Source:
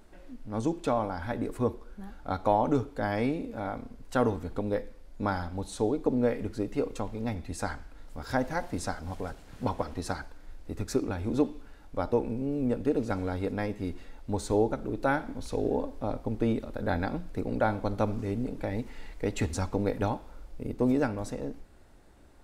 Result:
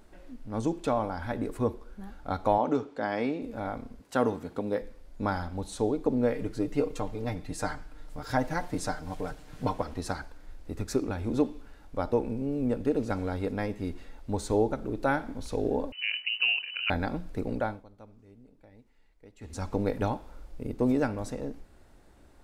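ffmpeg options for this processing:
-filter_complex "[0:a]asettb=1/sr,asplit=3[a][b][c];[a]atrim=end=2.584[d];[b]atrim=start=2.58:end=3.42,asetpts=PTS-STARTPTS,afade=t=in:d=0.004:c=qsin,afade=t=out:st=0.836:d=0.004:c=qsin,highpass=210,lowpass=6.1k[e];[c]atrim=start=3.416[f];[d][e]acrossfade=d=0.004:c1=hsin:c2=qsin[g];[g][f]acrossfade=d=0.004:c1=qsin:c2=hsin,asettb=1/sr,asplit=3[h][i][j];[h]atrim=end=4.004[k];[i]atrim=start=4:end=4.81,asetpts=PTS-STARTPTS,afade=t=in:d=0.004:c=qsin,afade=t=out:st=0.806:d=0.004:c=qsin,highpass=140[l];[j]atrim=start=4.806[m];[k][l]acrossfade=d=0.004:c1=hsin:c2=qsin[n];[n][m]acrossfade=d=0.004:c1=qsin:c2=hsin,asettb=1/sr,asplit=3[o][p][q];[o]atrim=end=6.334[r];[p]atrim=start=6.33:end=9.79,asetpts=PTS-STARTPTS,afade=t=in:d=0.004:c=qsin,afade=t=out:st=3.456:d=0.004:c=qsin,aecho=1:1:6.6:0.53,atrim=end_sample=152586[s];[q]atrim=start=9.786[t];[r][s]acrossfade=d=0.004:c1=hsin:c2=qsin[u];[u][t]acrossfade=d=0.004:c1=qsin:c2=hsin,asettb=1/sr,asplit=3[v][w][x];[v]atrim=end=15.924[y];[w]atrim=start=15.92:end=16.9,asetpts=PTS-STARTPTS,afade=t=in:d=0.004:c=qsin,afade=t=out:st=0.976:d=0.004:c=qsin,lowpass=f=2.6k:t=q:w=0.5098,lowpass=f=2.6k:t=q:w=0.6013,lowpass=f=2.6k:t=q:w=0.9,lowpass=f=2.6k:t=q:w=2.563,afreqshift=-3000[z];[x]atrim=start=16.896[aa];[y][z]acrossfade=d=0.004:c1=hsin:c2=qsin[ab];[ab][aa]acrossfade=d=0.004:c1=qsin:c2=hsin,asplit=3[ac][ad][ae];[ac]atrim=end=17.85,asetpts=PTS-STARTPTS,afade=t=out:st=17.5:d=0.35:silence=0.0707946[af];[ad]atrim=start=17.85:end=19.4,asetpts=PTS-STARTPTS,volume=-23dB[ag];[ae]atrim=start=19.4,asetpts=PTS-STARTPTS,afade=t=in:d=0.35:silence=0.0707946[ah];[af][ag][ah]concat=n=3:v=0:a=1"

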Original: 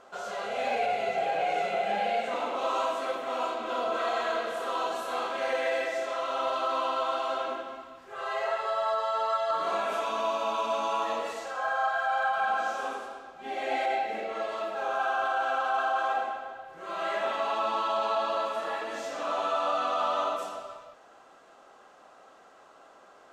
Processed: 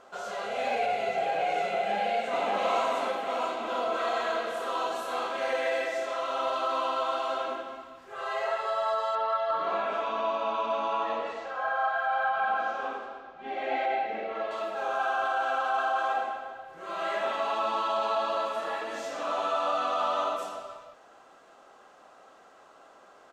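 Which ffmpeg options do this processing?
-filter_complex "[0:a]asplit=2[a][b];[b]afade=t=in:st=1.74:d=0.01,afade=t=out:st=2.5:d=0.01,aecho=0:1:590|1180|1770|2360|2950|3540:0.794328|0.357448|0.160851|0.0723832|0.0325724|0.0146576[c];[a][c]amix=inputs=2:normalize=0,asettb=1/sr,asplit=3[d][e][f];[d]atrim=end=9.154[g];[e]atrim=start=9.15:end=14.51,asetpts=PTS-STARTPTS,afade=t=in:d=0.004:c=qsin,afade=t=out:st=5.356:d=0.004:c=qsin,lowpass=3.2k[h];[f]atrim=start=14.506[i];[g][h]acrossfade=d=0.004:c1=hsin:c2=qsin[j];[j][i]acrossfade=d=0.004:c1=qsin:c2=hsin"

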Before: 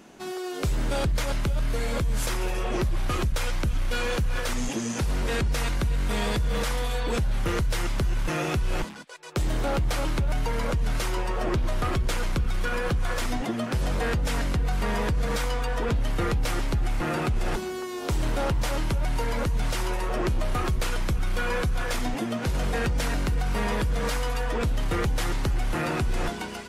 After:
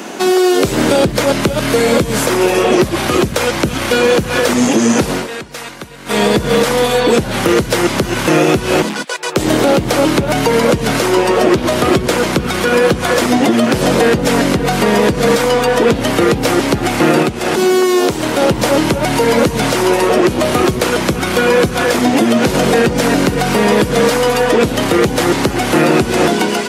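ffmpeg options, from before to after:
-filter_complex "[0:a]asettb=1/sr,asplit=3[a][b][c];[a]atrim=end=17.224[d];[b]atrim=start=17.22:end=18.42,asetpts=PTS-STARTPTS,afade=t=in:d=0.004:c=qsin,afade=t=out:st=1.196:d=0.004:c=qsin,acompressor=threshold=-29dB:ratio=6:attack=3.2:release=140:knee=1:detection=peak[e];[c]atrim=start=18.416[f];[d][e]acrossfade=d=0.004:c1=hsin:c2=qsin[g];[g][f]acrossfade=d=0.004:c1=qsin:c2=hsin,asplit=3[h][i][j];[h]atrim=end=5.28,asetpts=PTS-STARTPTS,afade=t=out:st=5.05:d=0.23:silence=0.0944061[k];[i]atrim=start=5.28:end=6.05,asetpts=PTS-STARTPTS,volume=-20.5dB[l];[j]atrim=start=6.05,asetpts=PTS-STARTPTS,afade=t=in:d=0.23:silence=0.0944061[m];[k][l][m]concat=n=3:v=0:a=1,highpass=250,acrossover=split=560|2100[n][o][p];[n]acompressor=threshold=-32dB:ratio=4[q];[o]acompressor=threshold=-46dB:ratio=4[r];[p]acompressor=threshold=-46dB:ratio=4[s];[q][r][s]amix=inputs=3:normalize=0,alimiter=level_in=25.5dB:limit=-1dB:release=50:level=0:latency=1,volume=-1dB"

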